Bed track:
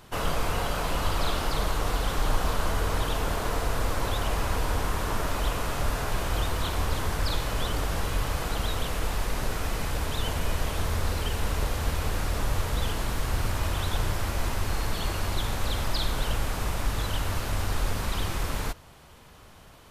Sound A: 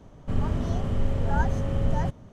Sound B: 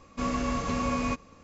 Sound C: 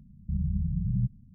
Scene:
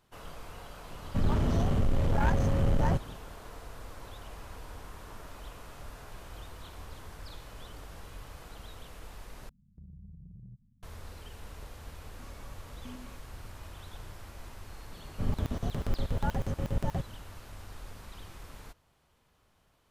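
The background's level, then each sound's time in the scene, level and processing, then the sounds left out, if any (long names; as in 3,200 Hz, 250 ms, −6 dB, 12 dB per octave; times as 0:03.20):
bed track −18 dB
0:00.87: mix in A −8.5 dB + leveller curve on the samples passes 3
0:09.49: overwrite with C −13 dB + downward compressor 4 to 1, threshold −34 dBFS
0:12.01: mix in B −12 dB + step-sequenced resonator 9.5 Hz 82–590 Hz
0:14.91: mix in A −4.5 dB + regular buffer underruns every 0.12 s, samples 2,048, zero, from 0:00.43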